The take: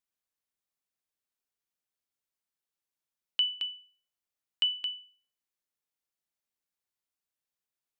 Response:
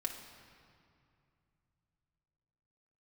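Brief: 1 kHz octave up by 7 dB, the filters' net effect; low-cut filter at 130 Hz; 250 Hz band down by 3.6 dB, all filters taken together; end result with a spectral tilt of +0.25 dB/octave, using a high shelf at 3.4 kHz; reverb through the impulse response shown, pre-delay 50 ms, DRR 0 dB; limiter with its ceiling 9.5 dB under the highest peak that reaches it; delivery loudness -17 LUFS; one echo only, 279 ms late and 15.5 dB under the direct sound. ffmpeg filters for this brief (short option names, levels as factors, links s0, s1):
-filter_complex "[0:a]highpass=130,equalizer=f=250:t=o:g=-5,equalizer=f=1000:t=o:g=8.5,highshelf=f=3400:g=5,alimiter=limit=0.0631:level=0:latency=1,aecho=1:1:279:0.168,asplit=2[s0][s1];[1:a]atrim=start_sample=2205,adelay=50[s2];[s1][s2]afir=irnorm=-1:irlink=0,volume=0.891[s3];[s0][s3]amix=inputs=2:normalize=0,volume=3.98"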